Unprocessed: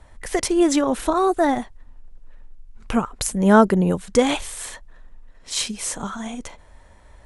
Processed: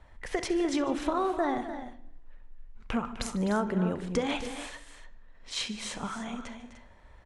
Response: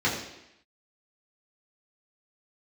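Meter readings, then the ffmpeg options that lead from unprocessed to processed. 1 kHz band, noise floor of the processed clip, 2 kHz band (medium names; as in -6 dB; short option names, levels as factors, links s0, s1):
-10.5 dB, -54 dBFS, -9.0 dB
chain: -filter_complex "[0:a]lowpass=2600,crystalizer=i=3.5:c=0,acompressor=threshold=0.126:ratio=6,aecho=1:1:66|149|254|299:0.126|0.119|0.237|0.251,asplit=2[s0][s1];[1:a]atrim=start_sample=2205,adelay=28[s2];[s1][s2]afir=irnorm=-1:irlink=0,volume=0.0447[s3];[s0][s3]amix=inputs=2:normalize=0,volume=0.447"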